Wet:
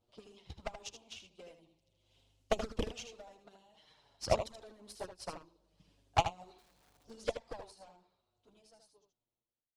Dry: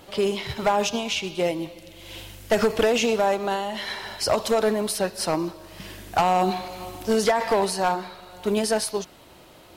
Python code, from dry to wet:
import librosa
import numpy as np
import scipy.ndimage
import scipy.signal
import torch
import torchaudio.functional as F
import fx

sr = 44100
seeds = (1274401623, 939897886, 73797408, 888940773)

p1 = fx.fade_out_tail(x, sr, length_s=2.77)
p2 = fx.peak_eq(p1, sr, hz=1800.0, db=-11.0, octaves=0.97)
p3 = 10.0 ** (-22.5 / 20.0) * (np.abs((p2 / 10.0 ** (-22.5 / 20.0) + 3.0) % 4.0 - 2.0) - 1.0)
p4 = p2 + (p3 * librosa.db_to_amplitude(-12.0))
p5 = fx.hpss(p4, sr, part='harmonic', gain_db=-11)
p6 = fx.low_shelf(p5, sr, hz=89.0, db=10.0)
p7 = fx.cheby_harmonics(p6, sr, harmonics=(3,), levels_db=(-11,), full_scale_db=-12.5)
p8 = fx.env_flanger(p7, sr, rest_ms=8.9, full_db=-28.5)
p9 = scipy.signal.sosfilt(scipy.signal.butter(2, 7500.0, 'lowpass', fs=sr, output='sos'), p8)
p10 = fx.overflow_wrap(p9, sr, gain_db=54.0, at=(6.58, 7.03))
p11 = p10 + fx.echo_single(p10, sr, ms=78, db=-6.5, dry=0)
p12 = fx.upward_expand(p11, sr, threshold_db=-52.0, expansion=1.5)
y = p12 * librosa.db_to_amplitude(3.5)